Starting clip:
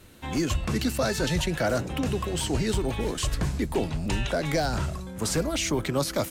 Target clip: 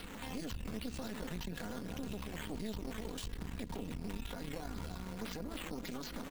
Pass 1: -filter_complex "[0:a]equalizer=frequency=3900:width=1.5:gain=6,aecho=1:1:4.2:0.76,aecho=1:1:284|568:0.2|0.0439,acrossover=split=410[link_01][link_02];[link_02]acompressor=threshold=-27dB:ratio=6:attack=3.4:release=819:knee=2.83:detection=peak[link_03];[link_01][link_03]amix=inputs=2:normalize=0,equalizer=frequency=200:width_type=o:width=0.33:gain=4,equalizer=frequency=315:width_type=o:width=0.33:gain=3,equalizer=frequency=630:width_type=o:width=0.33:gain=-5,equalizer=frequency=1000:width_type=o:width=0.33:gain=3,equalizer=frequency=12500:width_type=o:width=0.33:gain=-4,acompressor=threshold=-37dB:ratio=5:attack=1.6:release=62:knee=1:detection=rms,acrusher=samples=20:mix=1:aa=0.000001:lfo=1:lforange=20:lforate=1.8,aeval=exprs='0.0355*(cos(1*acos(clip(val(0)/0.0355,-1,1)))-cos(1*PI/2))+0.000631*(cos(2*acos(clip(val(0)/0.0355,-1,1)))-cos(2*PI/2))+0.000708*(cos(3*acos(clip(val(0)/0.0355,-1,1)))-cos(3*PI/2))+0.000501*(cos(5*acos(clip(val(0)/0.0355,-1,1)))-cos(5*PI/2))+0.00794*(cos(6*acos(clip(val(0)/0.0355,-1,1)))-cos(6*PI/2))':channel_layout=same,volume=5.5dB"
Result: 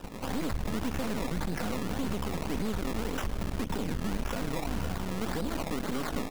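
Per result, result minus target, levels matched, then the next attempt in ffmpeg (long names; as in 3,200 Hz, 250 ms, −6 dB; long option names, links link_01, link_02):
downward compressor: peak gain reduction −9.5 dB; sample-and-hold swept by an LFO: distortion +4 dB
-filter_complex "[0:a]equalizer=frequency=3900:width=1.5:gain=6,aecho=1:1:4.2:0.76,aecho=1:1:284|568:0.2|0.0439,acrossover=split=410[link_01][link_02];[link_02]acompressor=threshold=-27dB:ratio=6:attack=3.4:release=819:knee=2.83:detection=peak[link_03];[link_01][link_03]amix=inputs=2:normalize=0,equalizer=frequency=200:width_type=o:width=0.33:gain=4,equalizer=frequency=315:width_type=o:width=0.33:gain=3,equalizer=frequency=630:width_type=o:width=0.33:gain=-5,equalizer=frequency=1000:width_type=o:width=0.33:gain=3,equalizer=frequency=12500:width_type=o:width=0.33:gain=-4,acompressor=threshold=-49dB:ratio=5:attack=1.6:release=62:knee=1:detection=rms,acrusher=samples=20:mix=1:aa=0.000001:lfo=1:lforange=20:lforate=1.8,aeval=exprs='0.0355*(cos(1*acos(clip(val(0)/0.0355,-1,1)))-cos(1*PI/2))+0.000631*(cos(2*acos(clip(val(0)/0.0355,-1,1)))-cos(2*PI/2))+0.000708*(cos(3*acos(clip(val(0)/0.0355,-1,1)))-cos(3*PI/2))+0.000501*(cos(5*acos(clip(val(0)/0.0355,-1,1)))-cos(5*PI/2))+0.00794*(cos(6*acos(clip(val(0)/0.0355,-1,1)))-cos(6*PI/2))':channel_layout=same,volume=5.5dB"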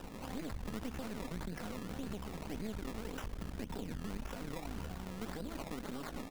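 sample-and-hold swept by an LFO: distortion +4 dB
-filter_complex "[0:a]equalizer=frequency=3900:width=1.5:gain=6,aecho=1:1:4.2:0.76,aecho=1:1:284|568:0.2|0.0439,acrossover=split=410[link_01][link_02];[link_02]acompressor=threshold=-27dB:ratio=6:attack=3.4:release=819:knee=2.83:detection=peak[link_03];[link_01][link_03]amix=inputs=2:normalize=0,equalizer=frequency=200:width_type=o:width=0.33:gain=4,equalizer=frequency=315:width_type=o:width=0.33:gain=3,equalizer=frequency=630:width_type=o:width=0.33:gain=-5,equalizer=frequency=1000:width_type=o:width=0.33:gain=3,equalizer=frequency=12500:width_type=o:width=0.33:gain=-4,acompressor=threshold=-49dB:ratio=5:attack=1.6:release=62:knee=1:detection=rms,acrusher=samples=6:mix=1:aa=0.000001:lfo=1:lforange=6:lforate=1.8,aeval=exprs='0.0355*(cos(1*acos(clip(val(0)/0.0355,-1,1)))-cos(1*PI/2))+0.000631*(cos(2*acos(clip(val(0)/0.0355,-1,1)))-cos(2*PI/2))+0.000708*(cos(3*acos(clip(val(0)/0.0355,-1,1)))-cos(3*PI/2))+0.000501*(cos(5*acos(clip(val(0)/0.0355,-1,1)))-cos(5*PI/2))+0.00794*(cos(6*acos(clip(val(0)/0.0355,-1,1)))-cos(6*PI/2))':channel_layout=same,volume=5.5dB"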